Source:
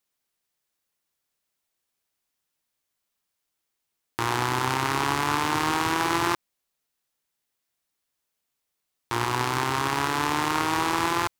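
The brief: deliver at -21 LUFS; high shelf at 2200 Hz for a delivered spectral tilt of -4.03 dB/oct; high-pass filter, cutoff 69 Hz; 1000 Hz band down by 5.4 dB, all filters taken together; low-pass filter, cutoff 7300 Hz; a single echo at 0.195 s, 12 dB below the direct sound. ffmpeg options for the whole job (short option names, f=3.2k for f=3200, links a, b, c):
-af "highpass=69,lowpass=7.3k,equalizer=f=1k:t=o:g=-4.5,highshelf=f=2.2k:g=-8.5,aecho=1:1:195:0.251,volume=8dB"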